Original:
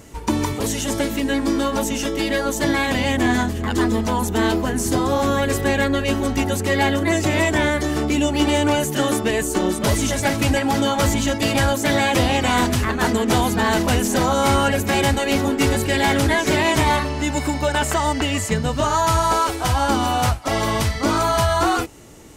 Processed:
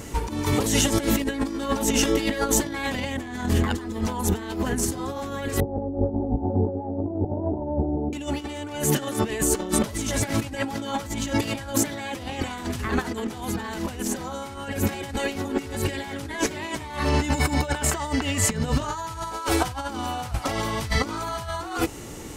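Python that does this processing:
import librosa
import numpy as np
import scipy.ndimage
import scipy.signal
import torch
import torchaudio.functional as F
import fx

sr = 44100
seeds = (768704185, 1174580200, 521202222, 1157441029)

y = fx.steep_lowpass(x, sr, hz=910.0, slope=96, at=(5.6, 8.13))
y = fx.notch(y, sr, hz=640.0, q=15.0)
y = fx.over_compress(y, sr, threshold_db=-25.0, ratio=-0.5)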